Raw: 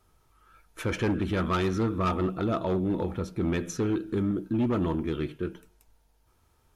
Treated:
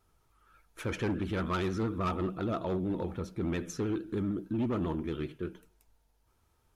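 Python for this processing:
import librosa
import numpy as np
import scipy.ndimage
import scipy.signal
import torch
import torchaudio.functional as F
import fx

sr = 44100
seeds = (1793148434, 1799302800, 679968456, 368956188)

y = fx.vibrato(x, sr, rate_hz=13.0, depth_cents=65.0)
y = F.gain(torch.from_numpy(y), -5.0).numpy()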